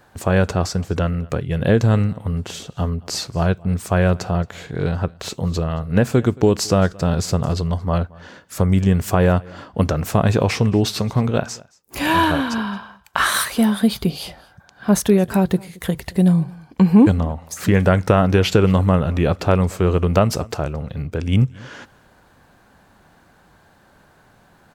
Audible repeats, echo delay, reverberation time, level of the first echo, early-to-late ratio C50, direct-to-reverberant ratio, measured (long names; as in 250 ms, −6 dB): 1, 223 ms, no reverb audible, −24.0 dB, no reverb audible, no reverb audible